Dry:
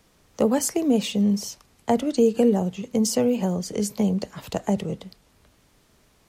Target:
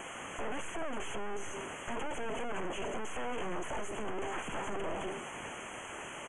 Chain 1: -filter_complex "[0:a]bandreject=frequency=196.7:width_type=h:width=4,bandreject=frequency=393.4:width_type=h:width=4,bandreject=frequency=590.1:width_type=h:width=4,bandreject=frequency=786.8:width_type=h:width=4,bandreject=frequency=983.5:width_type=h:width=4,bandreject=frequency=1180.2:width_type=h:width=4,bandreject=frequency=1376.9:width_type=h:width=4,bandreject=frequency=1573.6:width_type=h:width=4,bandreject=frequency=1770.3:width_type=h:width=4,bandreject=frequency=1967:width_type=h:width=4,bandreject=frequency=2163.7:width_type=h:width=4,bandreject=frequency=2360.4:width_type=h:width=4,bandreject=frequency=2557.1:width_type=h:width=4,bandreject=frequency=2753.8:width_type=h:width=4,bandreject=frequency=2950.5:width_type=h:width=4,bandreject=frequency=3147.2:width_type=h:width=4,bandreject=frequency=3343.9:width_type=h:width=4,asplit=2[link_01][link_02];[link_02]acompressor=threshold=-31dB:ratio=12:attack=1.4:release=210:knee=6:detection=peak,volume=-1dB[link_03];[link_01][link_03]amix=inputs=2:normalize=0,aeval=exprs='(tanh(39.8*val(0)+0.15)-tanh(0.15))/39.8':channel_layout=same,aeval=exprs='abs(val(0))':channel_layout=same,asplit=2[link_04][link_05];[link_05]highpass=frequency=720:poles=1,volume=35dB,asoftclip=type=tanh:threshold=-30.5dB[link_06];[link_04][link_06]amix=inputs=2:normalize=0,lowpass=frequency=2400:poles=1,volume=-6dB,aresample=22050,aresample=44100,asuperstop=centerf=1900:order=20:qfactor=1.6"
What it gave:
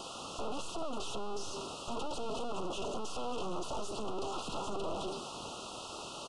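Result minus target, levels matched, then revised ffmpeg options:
2,000 Hz band −10.5 dB
-filter_complex "[0:a]bandreject=frequency=196.7:width_type=h:width=4,bandreject=frequency=393.4:width_type=h:width=4,bandreject=frequency=590.1:width_type=h:width=4,bandreject=frequency=786.8:width_type=h:width=4,bandreject=frequency=983.5:width_type=h:width=4,bandreject=frequency=1180.2:width_type=h:width=4,bandreject=frequency=1376.9:width_type=h:width=4,bandreject=frequency=1573.6:width_type=h:width=4,bandreject=frequency=1770.3:width_type=h:width=4,bandreject=frequency=1967:width_type=h:width=4,bandreject=frequency=2163.7:width_type=h:width=4,bandreject=frequency=2360.4:width_type=h:width=4,bandreject=frequency=2557.1:width_type=h:width=4,bandreject=frequency=2753.8:width_type=h:width=4,bandreject=frequency=2950.5:width_type=h:width=4,bandreject=frequency=3147.2:width_type=h:width=4,bandreject=frequency=3343.9:width_type=h:width=4,asplit=2[link_01][link_02];[link_02]acompressor=threshold=-31dB:ratio=12:attack=1.4:release=210:knee=6:detection=peak,volume=-1dB[link_03];[link_01][link_03]amix=inputs=2:normalize=0,aeval=exprs='(tanh(39.8*val(0)+0.15)-tanh(0.15))/39.8':channel_layout=same,aeval=exprs='abs(val(0))':channel_layout=same,asplit=2[link_04][link_05];[link_05]highpass=frequency=720:poles=1,volume=35dB,asoftclip=type=tanh:threshold=-30.5dB[link_06];[link_04][link_06]amix=inputs=2:normalize=0,lowpass=frequency=2400:poles=1,volume=-6dB,aresample=22050,aresample=44100,asuperstop=centerf=4500:order=20:qfactor=1.6"

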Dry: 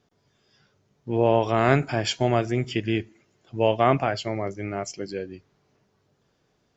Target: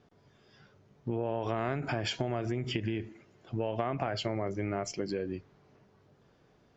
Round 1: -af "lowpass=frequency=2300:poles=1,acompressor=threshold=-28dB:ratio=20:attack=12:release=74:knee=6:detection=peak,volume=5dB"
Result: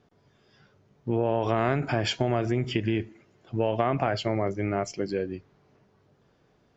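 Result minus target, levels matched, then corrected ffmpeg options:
downward compressor: peak gain reduction −7.5 dB
-af "lowpass=frequency=2300:poles=1,acompressor=threshold=-36dB:ratio=20:attack=12:release=74:knee=6:detection=peak,volume=5dB"

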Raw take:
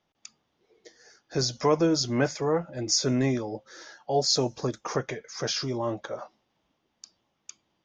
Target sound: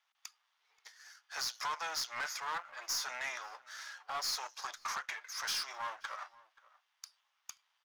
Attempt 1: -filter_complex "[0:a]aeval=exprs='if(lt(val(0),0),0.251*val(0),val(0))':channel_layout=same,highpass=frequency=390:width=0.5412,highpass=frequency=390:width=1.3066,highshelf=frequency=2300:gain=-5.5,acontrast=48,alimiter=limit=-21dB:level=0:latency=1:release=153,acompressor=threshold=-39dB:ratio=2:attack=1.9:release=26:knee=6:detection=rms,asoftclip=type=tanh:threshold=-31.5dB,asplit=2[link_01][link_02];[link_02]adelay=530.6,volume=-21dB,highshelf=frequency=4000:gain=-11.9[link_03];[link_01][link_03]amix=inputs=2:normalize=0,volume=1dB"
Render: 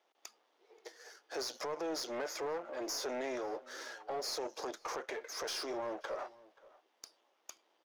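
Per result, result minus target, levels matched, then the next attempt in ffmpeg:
500 Hz band +16.5 dB; downward compressor: peak gain reduction +8.5 dB
-filter_complex "[0:a]aeval=exprs='if(lt(val(0),0),0.251*val(0),val(0))':channel_layout=same,highpass=frequency=1100:width=0.5412,highpass=frequency=1100:width=1.3066,highshelf=frequency=2300:gain=-5.5,acontrast=48,alimiter=limit=-21dB:level=0:latency=1:release=153,acompressor=threshold=-39dB:ratio=2:attack=1.9:release=26:knee=6:detection=rms,asoftclip=type=tanh:threshold=-31.5dB,asplit=2[link_01][link_02];[link_02]adelay=530.6,volume=-21dB,highshelf=frequency=4000:gain=-11.9[link_03];[link_01][link_03]amix=inputs=2:normalize=0,volume=1dB"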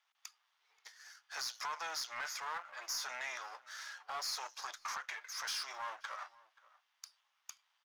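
downward compressor: peak gain reduction +7 dB
-filter_complex "[0:a]aeval=exprs='if(lt(val(0),0),0.251*val(0),val(0))':channel_layout=same,highpass=frequency=1100:width=0.5412,highpass=frequency=1100:width=1.3066,highshelf=frequency=2300:gain=-5.5,acontrast=48,alimiter=limit=-21dB:level=0:latency=1:release=153,asoftclip=type=tanh:threshold=-31.5dB,asplit=2[link_01][link_02];[link_02]adelay=530.6,volume=-21dB,highshelf=frequency=4000:gain=-11.9[link_03];[link_01][link_03]amix=inputs=2:normalize=0,volume=1dB"

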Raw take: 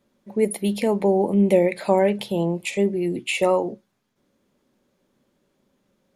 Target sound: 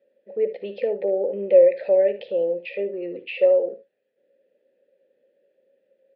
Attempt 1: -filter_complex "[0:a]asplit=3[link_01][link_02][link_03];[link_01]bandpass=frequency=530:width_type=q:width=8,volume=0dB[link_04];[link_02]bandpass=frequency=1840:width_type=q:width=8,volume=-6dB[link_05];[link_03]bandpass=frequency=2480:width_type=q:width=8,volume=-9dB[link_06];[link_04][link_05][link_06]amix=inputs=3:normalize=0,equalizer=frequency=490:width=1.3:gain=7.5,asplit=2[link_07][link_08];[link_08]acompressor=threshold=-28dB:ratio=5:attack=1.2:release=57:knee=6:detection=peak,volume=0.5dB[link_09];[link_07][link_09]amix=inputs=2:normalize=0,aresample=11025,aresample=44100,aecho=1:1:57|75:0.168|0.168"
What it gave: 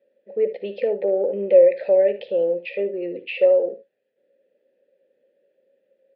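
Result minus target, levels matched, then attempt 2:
downward compressor: peak gain reduction −9 dB
-filter_complex "[0:a]asplit=3[link_01][link_02][link_03];[link_01]bandpass=frequency=530:width_type=q:width=8,volume=0dB[link_04];[link_02]bandpass=frequency=1840:width_type=q:width=8,volume=-6dB[link_05];[link_03]bandpass=frequency=2480:width_type=q:width=8,volume=-9dB[link_06];[link_04][link_05][link_06]amix=inputs=3:normalize=0,equalizer=frequency=490:width=1.3:gain=7.5,asplit=2[link_07][link_08];[link_08]acompressor=threshold=-39dB:ratio=5:attack=1.2:release=57:knee=6:detection=peak,volume=0.5dB[link_09];[link_07][link_09]amix=inputs=2:normalize=0,aresample=11025,aresample=44100,aecho=1:1:57|75:0.168|0.168"

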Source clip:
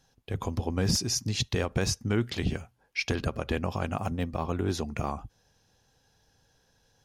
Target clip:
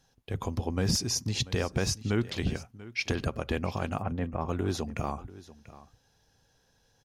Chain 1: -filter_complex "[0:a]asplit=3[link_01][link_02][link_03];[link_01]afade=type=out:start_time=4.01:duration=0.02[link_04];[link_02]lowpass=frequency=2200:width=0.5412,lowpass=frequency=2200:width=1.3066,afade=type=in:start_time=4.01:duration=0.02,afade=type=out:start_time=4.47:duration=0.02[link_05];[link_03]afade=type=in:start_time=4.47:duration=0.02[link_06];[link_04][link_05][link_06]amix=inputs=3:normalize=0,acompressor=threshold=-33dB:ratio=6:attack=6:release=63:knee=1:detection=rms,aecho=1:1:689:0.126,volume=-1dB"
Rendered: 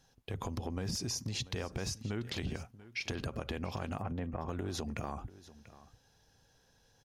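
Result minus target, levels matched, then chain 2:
downward compressor: peak gain reduction +12 dB
-filter_complex "[0:a]asplit=3[link_01][link_02][link_03];[link_01]afade=type=out:start_time=4.01:duration=0.02[link_04];[link_02]lowpass=frequency=2200:width=0.5412,lowpass=frequency=2200:width=1.3066,afade=type=in:start_time=4.01:duration=0.02,afade=type=out:start_time=4.47:duration=0.02[link_05];[link_03]afade=type=in:start_time=4.47:duration=0.02[link_06];[link_04][link_05][link_06]amix=inputs=3:normalize=0,aecho=1:1:689:0.126,volume=-1dB"

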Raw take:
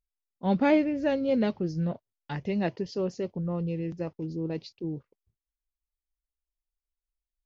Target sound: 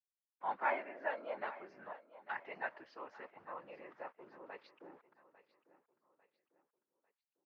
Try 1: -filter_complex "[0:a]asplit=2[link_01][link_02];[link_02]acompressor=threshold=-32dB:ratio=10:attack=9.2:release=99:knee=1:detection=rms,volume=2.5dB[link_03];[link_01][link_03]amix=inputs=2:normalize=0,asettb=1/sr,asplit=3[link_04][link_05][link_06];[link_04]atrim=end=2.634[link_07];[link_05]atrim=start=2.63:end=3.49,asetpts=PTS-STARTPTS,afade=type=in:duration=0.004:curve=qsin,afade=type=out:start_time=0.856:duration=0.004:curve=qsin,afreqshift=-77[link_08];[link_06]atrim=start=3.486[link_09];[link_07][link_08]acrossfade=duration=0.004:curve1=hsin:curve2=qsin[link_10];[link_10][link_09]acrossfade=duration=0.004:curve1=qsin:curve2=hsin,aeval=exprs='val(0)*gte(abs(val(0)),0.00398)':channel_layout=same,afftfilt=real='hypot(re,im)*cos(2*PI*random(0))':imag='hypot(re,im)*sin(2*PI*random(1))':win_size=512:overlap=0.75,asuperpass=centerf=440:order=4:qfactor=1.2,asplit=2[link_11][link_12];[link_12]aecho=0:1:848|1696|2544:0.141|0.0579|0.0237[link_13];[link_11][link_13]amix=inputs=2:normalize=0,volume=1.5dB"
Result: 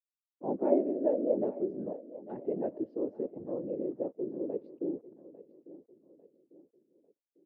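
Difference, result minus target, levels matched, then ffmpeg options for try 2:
1,000 Hz band −14.0 dB
-filter_complex "[0:a]asplit=2[link_01][link_02];[link_02]acompressor=threshold=-32dB:ratio=10:attack=9.2:release=99:knee=1:detection=rms,volume=2.5dB[link_03];[link_01][link_03]amix=inputs=2:normalize=0,asettb=1/sr,asplit=3[link_04][link_05][link_06];[link_04]atrim=end=2.634[link_07];[link_05]atrim=start=2.63:end=3.49,asetpts=PTS-STARTPTS,afade=type=in:duration=0.004:curve=qsin,afade=type=out:start_time=0.856:duration=0.004:curve=qsin,afreqshift=-77[link_08];[link_06]atrim=start=3.486[link_09];[link_07][link_08]acrossfade=duration=0.004:curve1=hsin:curve2=qsin[link_10];[link_10][link_09]acrossfade=duration=0.004:curve1=qsin:curve2=hsin,aeval=exprs='val(0)*gte(abs(val(0)),0.00398)':channel_layout=same,afftfilt=real='hypot(re,im)*cos(2*PI*random(0))':imag='hypot(re,im)*sin(2*PI*random(1))':win_size=512:overlap=0.75,asuperpass=centerf=1300:order=4:qfactor=1.2,asplit=2[link_11][link_12];[link_12]aecho=0:1:848|1696|2544:0.141|0.0579|0.0237[link_13];[link_11][link_13]amix=inputs=2:normalize=0,volume=1.5dB"

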